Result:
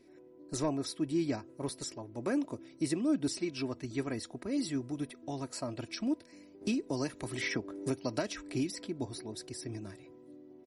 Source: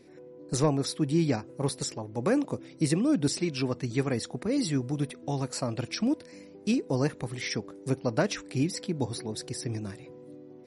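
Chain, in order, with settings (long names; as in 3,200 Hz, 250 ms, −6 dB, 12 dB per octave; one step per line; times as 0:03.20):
comb filter 3.1 ms, depth 50%
0:06.61–0:08.88: multiband upward and downward compressor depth 100%
level −7.5 dB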